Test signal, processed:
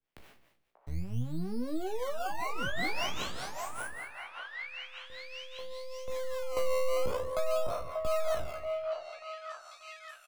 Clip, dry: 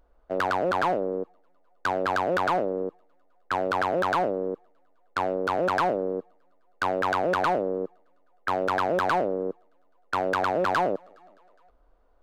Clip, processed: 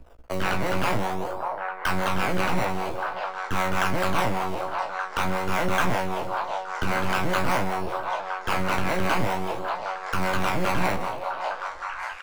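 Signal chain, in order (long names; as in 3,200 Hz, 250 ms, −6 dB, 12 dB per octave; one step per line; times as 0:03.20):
peak hold with a decay on every bin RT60 0.90 s
high shelf with overshoot 3,900 Hz −13 dB, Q 1.5
half-wave rectification
two-band tremolo in antiphase 5.1 Hz, depth 70%, crossover 410 Hz
in parallel at −5 dB: sample-and-hold swept by an LFO 18×, swing 100% 0.48 Hz
on the sum: double-tracking delay 16 ms −6 dB
on a send: echo through a band-pass that steps 587 ms, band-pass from 800 Hz, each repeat 0.7 octaves, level −3 dB
on the sum: multiband upward and downward compressor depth 40%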